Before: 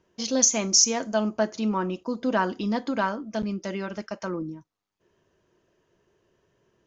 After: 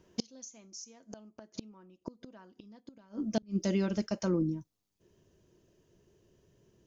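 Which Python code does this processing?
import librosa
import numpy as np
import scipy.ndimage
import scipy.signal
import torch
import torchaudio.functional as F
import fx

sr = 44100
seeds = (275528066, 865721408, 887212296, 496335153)

y = fx.peak_eq(x, sr, hz=1300.0, db=fx.steps((0.0, -6.0), (2.8, -14.5)), octaves=2.9)
y = fx.gate_flip(y, sr, shuts_db=-25.0, range_db=-33)
y = y * librosa.db_to_amplitude(6.5)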